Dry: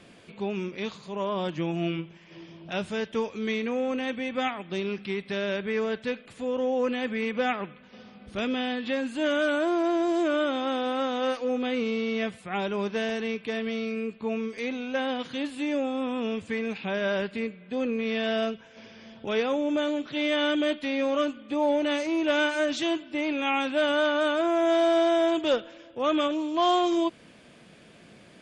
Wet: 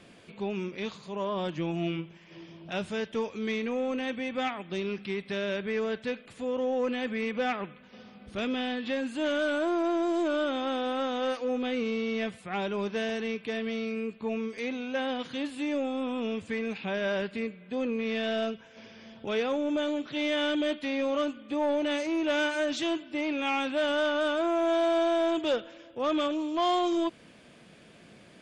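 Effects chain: saturation -18 dBFS, distortion -20 dB; trim -1.5 dB

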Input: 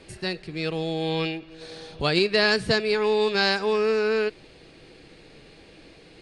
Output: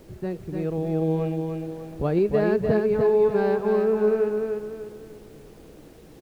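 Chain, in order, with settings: Bessel low-pass 560 Hz, order 2; added noise pink -61 dBFS; feedback delay 298 ms, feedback 37%, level -4.5 dB; trim +3 dB

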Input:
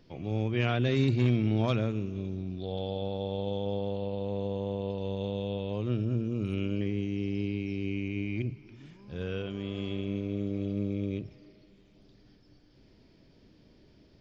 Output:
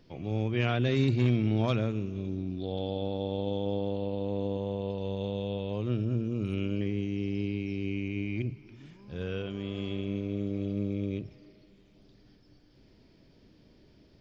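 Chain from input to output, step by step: 2.27–4.57 s: peaking EQ 290 Hz +6.5 dB 0.43 oct

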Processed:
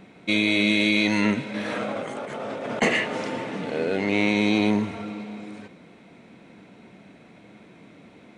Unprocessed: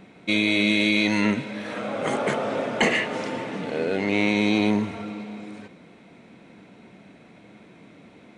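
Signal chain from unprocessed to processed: 1.54–2.82 s: compressor with a negative ratio -31 dBFS, ratio -1

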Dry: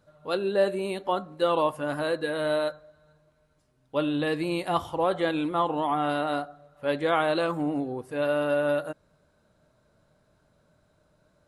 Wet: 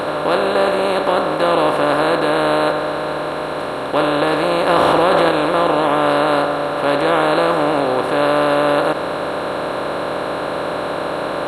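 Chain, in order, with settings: spectral levelling over time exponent 0.2; 4.69–5.29 s: level flattener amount 100%; trim +2 dB

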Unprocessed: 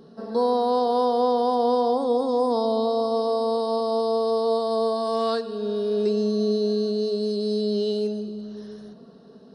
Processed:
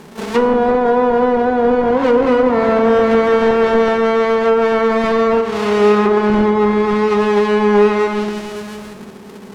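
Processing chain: square wave that keeps the level; low-pass that closes with the level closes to 720 Hz, closed at -14.5 dBFS; harmony voices +12 st -11 dB; reverberation RT60 2.1 s, pre-delay 3 ms, DRR 6 dB; trim +6 dB

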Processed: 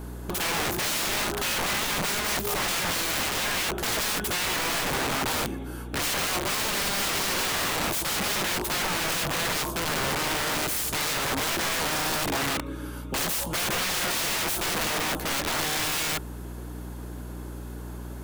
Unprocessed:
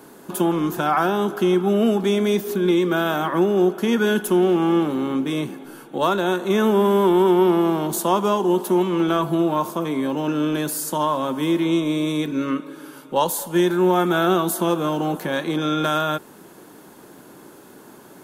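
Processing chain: hum 60 Hz, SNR 17 dB; integer overflow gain 22.5 dB

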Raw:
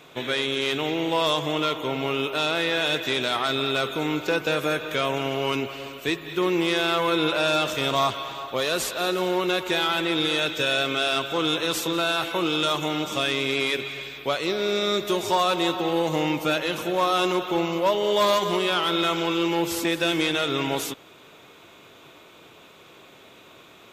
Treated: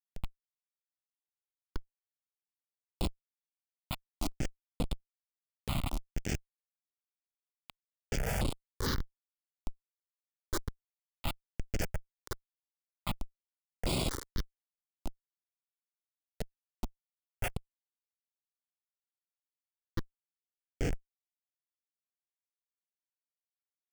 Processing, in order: self-modulated delay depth 0.47 ms; high-pass 68 Hz 24 dB/octave; resonant high shelf 6.5 kHz -12.5 dB, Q 3; in parallel at -3.5 dB: bit crusher 5-bit; on the sum: peaking EQ 210 Hz +8 dB 2.8 oct; saturation -15.5 dBFS, distortion -10 dB; compressor with a negative ratio -29 dBFS, ratio -0.5; band-pass sweep 7.3 kHz -> 590 Hz, 17.05–18.10 s; thinning echo 115 ms, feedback 51%, high-pass 370 Hz, level -9 dB; Schmitt trigger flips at -29.5 dBFS; stepped phaser 4.4 Hz 300–6000 Hz; trim +14.5 dB

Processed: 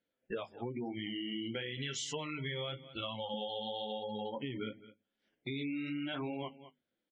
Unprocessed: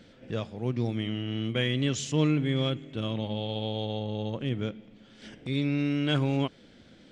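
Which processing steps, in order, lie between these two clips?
flange 0.96 Hz, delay 9.9 ms, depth 7.8 ms, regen -30%; gate -45 dBFS, range -21 dB; spectral noise reduction 15 dB; 1.77–3.34 s: peaking EQ 280 Hz -12.5 dB 0.89 oct; peak limiter -28 dBFS, peak gain reduction 10 dB; tone controls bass -11 dB, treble -6 dB; hum notches 50/100/150/200/250 Hz; delay 211 ms -23 dB; spectral gate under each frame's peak -30 dB strong; compression, threshold -46 dBFS, peak gain reduction 10 dB; trim +10 dB

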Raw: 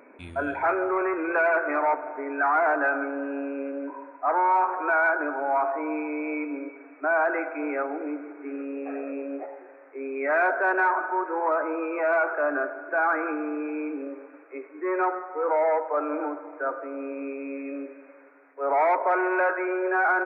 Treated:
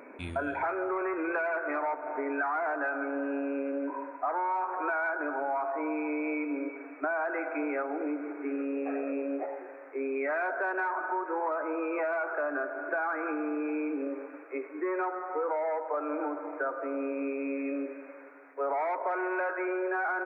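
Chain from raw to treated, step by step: compression 6:1, threshold -32 dBFS, peak gain reduction 13 dB; trim +3 dB

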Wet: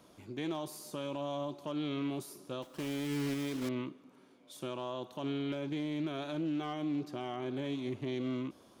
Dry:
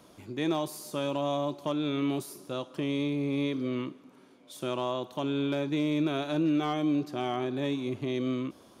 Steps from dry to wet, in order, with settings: 2.62–3.71 s: block-companded coder 3-bit; peak limiter -23.5 dBFS, peak gain reduction 4 dB; loudspeaker Doppler distortion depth 0.13 ms; trim -4.5 dB

